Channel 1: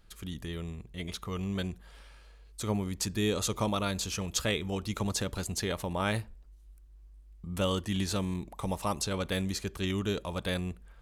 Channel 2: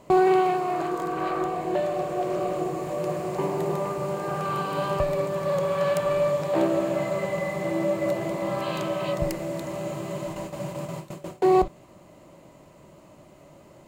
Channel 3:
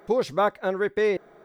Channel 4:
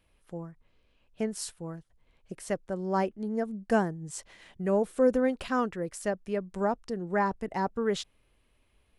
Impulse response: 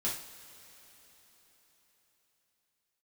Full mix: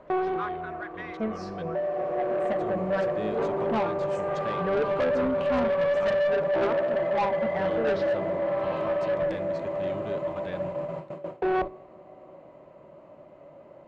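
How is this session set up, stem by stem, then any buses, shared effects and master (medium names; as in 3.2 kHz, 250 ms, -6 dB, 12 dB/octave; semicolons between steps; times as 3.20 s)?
-2.5 dB, 0.00 s, no send, none
-1.5 dB, 0.00 s, send -19 dB, peaking EQ 570 Hz +7 dB 0.52 oct; auto duck -14 dB, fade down 0.65 s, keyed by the third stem
-4.5 dB, 0.00 s, no send, steep high-pass 1.1 kHz
-1.0 dB, 0.00 s, send -10.5 dB, drifting ripple filter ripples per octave 0.59, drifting -0.62 Hz, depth 18 dB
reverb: on, pre-delay 3 ms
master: low-pass 1.9 kHz 12 dB/octave; bass shelf 170 Hz -9.5 dB; saturation -21 dBFS, distortion -10 dB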